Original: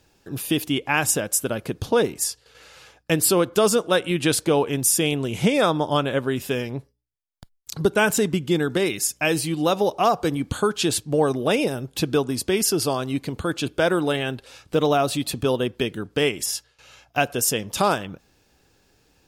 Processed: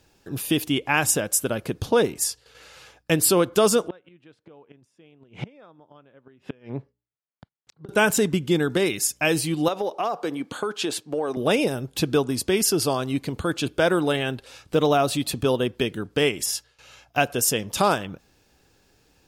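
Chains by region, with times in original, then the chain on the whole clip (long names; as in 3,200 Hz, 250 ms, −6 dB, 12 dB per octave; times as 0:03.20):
0:03.88–0:07.89: gate with flip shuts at −16 dBFS, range −30 dB + band-pass filter 110–2,400 Hz
0:09.68–0:11.37: high-pass filter 300 Hz + high-shelf EQ 4,600 Hz −8.5 dB + downward compressor, threshold −21 dBFS
whole clip: no processing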